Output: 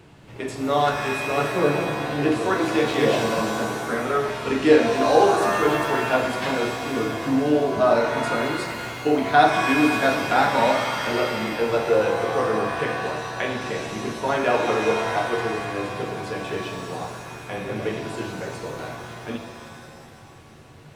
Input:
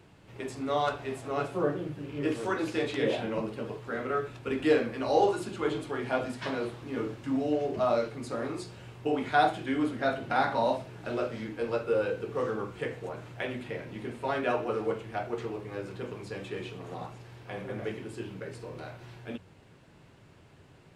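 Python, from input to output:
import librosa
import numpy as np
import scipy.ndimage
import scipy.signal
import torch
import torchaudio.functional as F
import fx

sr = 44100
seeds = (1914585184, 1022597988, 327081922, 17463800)

y = fx.rev_shimmer(x, sr, seeds[0], rt60_s=2.0, semitones=7, shimmer_db=-2, drr_db=5.5)
y = y * librosa.db_to_amplitude(7.0)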